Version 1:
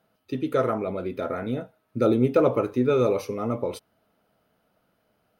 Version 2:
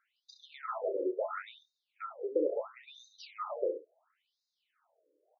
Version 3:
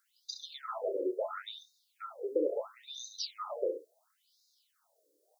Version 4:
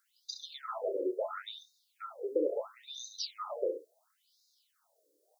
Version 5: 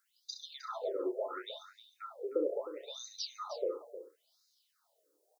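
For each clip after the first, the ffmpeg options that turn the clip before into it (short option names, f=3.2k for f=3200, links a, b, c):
-af "acompressor=threshold=-27dB:ratio=5,aecho=1:1:30|66:0.335|0.316,afftfilt=real='re*between(b*sr/1024,400*pow(5200/400,0.5+0.5*sin(2*PI*0.73*pts/sr))/1.41,400*pow(5200/400,0.5+0.5*sin(2*PI*0.73*pts/sr))*1.41)':imag='im*between(b*sr/1024,400*pow(5200/400,0.5+0.5*sin(2*PI*0.73*pts/sr))/1.41,400*pow(5200/400,0.5+0.5*sin(2*PI*0.73*pts/sr))*1.41)':win_size=1024:overlap=0.75"
-af "highshelf=f=2.6k:g=-9.5,aexciter=amount=15.8:drive=5:freq=3.7k"
-af anull
-af "aecho=1:1:310:0.237,volume=-2dB"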